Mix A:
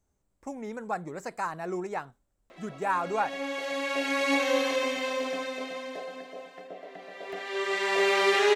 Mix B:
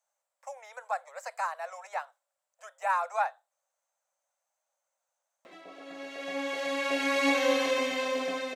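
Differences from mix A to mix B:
speech: add steep high-pass 530 Hz 96 dB/octave; background: entry +2.95 s

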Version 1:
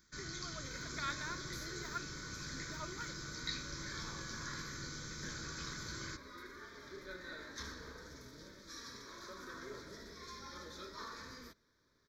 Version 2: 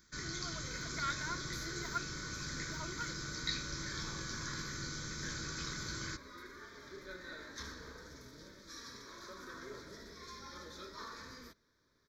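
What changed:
speech: add rippled EQ curve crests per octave 1.9, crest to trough 10 dB; first sound +3.5 dB

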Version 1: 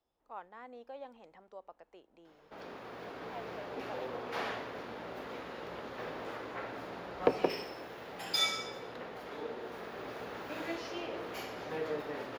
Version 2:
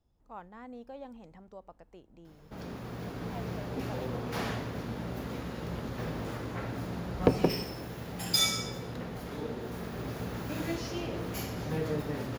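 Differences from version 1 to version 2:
speech: add treble shelf 4.4 kHz -5.5 dB; master: remove three-band isolator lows -20 dB, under 340 Hz, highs -13 dB, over 4.3 kHz

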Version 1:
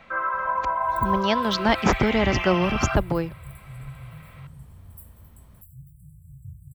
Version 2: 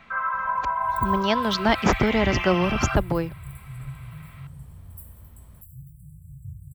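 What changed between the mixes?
first sound: add high-pass 740 Hz 24 dB/octave; second sound: send +11.5 dB

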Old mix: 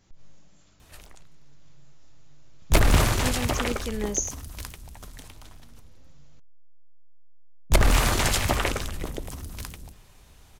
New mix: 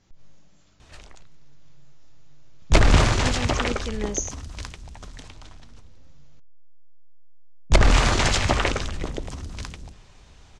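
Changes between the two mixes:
background +3.0 dB; master: add low-pass 7.1 kHz 24 dB/octave

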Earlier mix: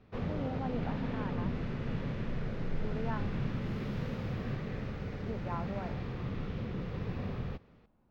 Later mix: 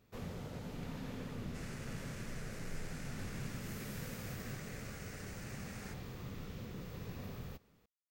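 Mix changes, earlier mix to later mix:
speech: muted; first sound -9.0 dB; master: remove distance through air 270 m

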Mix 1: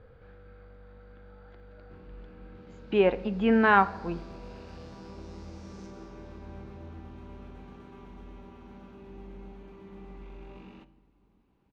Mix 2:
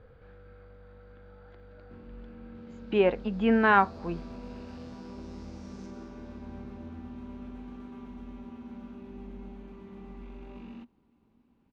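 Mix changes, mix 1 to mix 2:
background: add peaking EQ 240 Hz +11.5 dB 0.21 oct; reverb: off

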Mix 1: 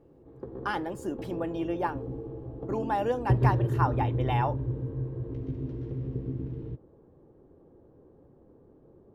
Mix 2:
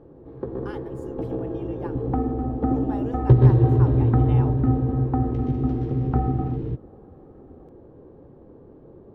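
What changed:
speech -10.5 dB; first sound +9.5 dB; second sound: unmuted

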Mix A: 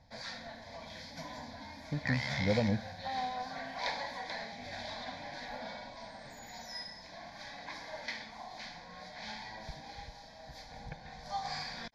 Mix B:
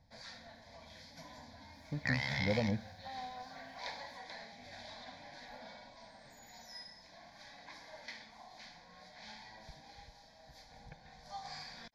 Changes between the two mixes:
speech -3.5 dB; first sound -8.5 dB; master: add treble shelf 6.5 kHz +6 dB

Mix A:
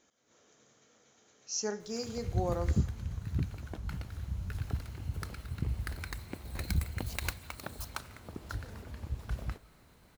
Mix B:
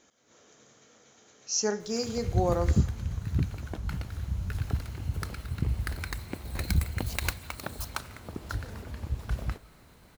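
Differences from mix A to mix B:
speech +6.5 dB; background +5.0 dB

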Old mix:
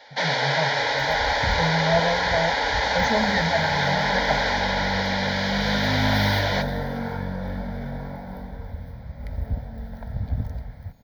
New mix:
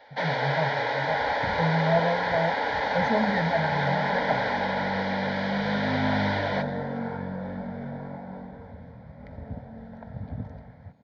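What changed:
second sound: add high-pass 150 Hz 12 dB/octave; master: add tape spacing loss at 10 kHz 28 dB

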